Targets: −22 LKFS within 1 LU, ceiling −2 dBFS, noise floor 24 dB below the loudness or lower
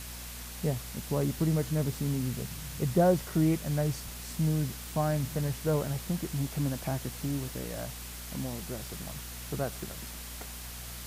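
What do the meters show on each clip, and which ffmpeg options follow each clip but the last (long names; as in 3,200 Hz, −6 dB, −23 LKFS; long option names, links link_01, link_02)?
mains hum 60 Hz; hum harmonics up to 240 Hz; level of the hum −43 dBFS; background noise floor −42 dBFS; target noise floor −56 dBFS; integrated loudness −32.0 LKFS; sample peak −13.5 dBFS; target loudness −22.0 LKFS
→ -af "bandreject=frequency=60:width_type=h:width=4,bandreject=frequency=120:width_type=h:width=4,bandreject=frequency=180:width_type=h:width=4,bandreject=frequency=240:width_type=h:width=4"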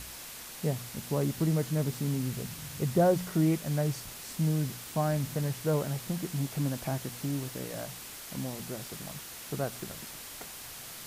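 mains hum none found; background noise floor −45 dBFS; target noise floor −57 dBFS
→ -af "afftdn=noise_reduction=12:noise_floor=-45"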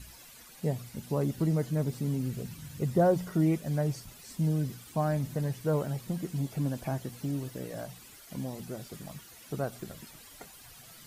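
background noise floor −52 dBFS; target noise floor −56 dBFS
→ -af "afftdn=noise_reduction=6:noise_floor=-52"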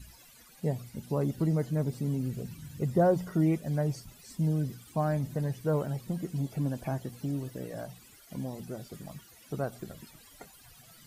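background noise floor −56 dBFS; integrated loudness −32.0 LKFS; sample peak −14.5 dBFS; target loudness −22.0 LKFS
→ -af "volume=10dB"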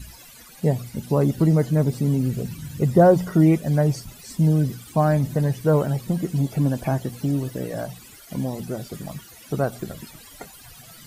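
integrated loudness −22.0 LKFS; sample peak −4.5 dBFS; background noise floor −46 dBFS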